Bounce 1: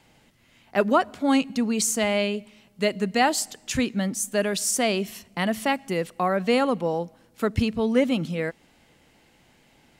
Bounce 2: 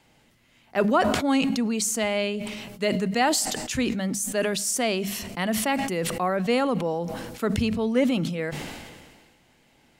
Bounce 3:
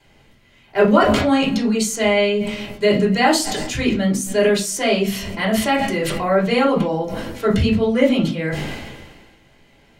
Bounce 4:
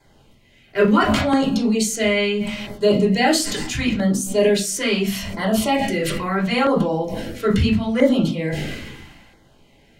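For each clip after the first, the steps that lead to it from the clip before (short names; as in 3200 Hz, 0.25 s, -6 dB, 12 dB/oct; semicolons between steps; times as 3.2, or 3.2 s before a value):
notches 50/100/150/200 Hz; sustainer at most 35 dB/s; gain -2 dB
reverb RT60 0.30 s, pre-delay 3 ms, DRR -4.5 dB; gain -4.5 dB
LFO notch saw down 0.75 Hz 340–2900 Hz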